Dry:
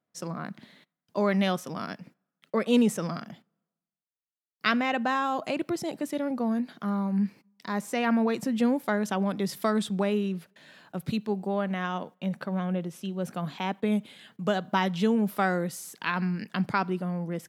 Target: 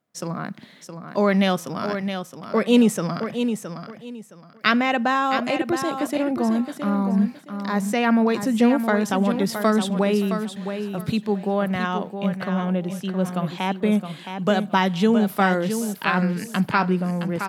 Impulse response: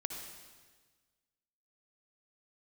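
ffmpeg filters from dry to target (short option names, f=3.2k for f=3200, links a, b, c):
-af "aecho=1:1:667|1334|2001:0.398|0.0916|0.0211,volume=6dB"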